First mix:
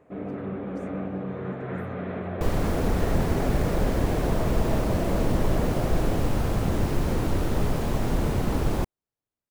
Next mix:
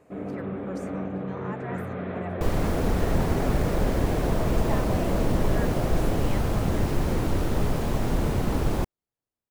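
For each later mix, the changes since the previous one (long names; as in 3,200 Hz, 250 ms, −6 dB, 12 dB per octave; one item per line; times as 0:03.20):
speech +10.5 dB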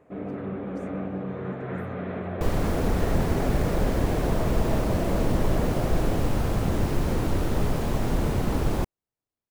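speech −10.0 dB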